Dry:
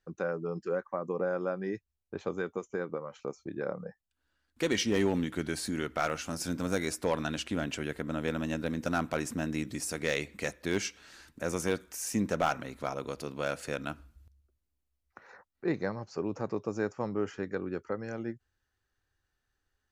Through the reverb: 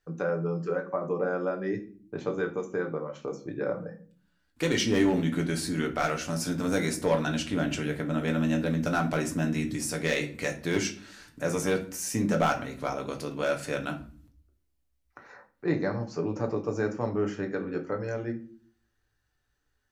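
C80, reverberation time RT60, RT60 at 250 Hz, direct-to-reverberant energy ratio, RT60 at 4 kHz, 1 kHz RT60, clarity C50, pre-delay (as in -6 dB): 18.0 dB, 0.45 s, 0.75 s, 2.5 dB, 0.30 s, 0.40 s, 12.5 dB, 7 ms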